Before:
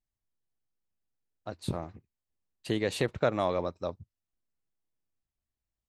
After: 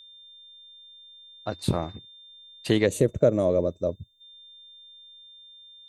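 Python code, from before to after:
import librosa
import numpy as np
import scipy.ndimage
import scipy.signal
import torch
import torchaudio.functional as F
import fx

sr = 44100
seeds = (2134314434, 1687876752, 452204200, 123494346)

y = x + 10.0 ** (-55.0 / 20.0) * np.sin(2.0 * np.pi * 3600.0 * np.arange(len(x)) / sr)
y = fx.spec_box(y, sr, start_s=2.86, length_s=1.35, low_hz=650.0, high_hz=5800.0, gain_db=-16)
y = F.gain(torch.from_numpy(y), 8.0).numpy()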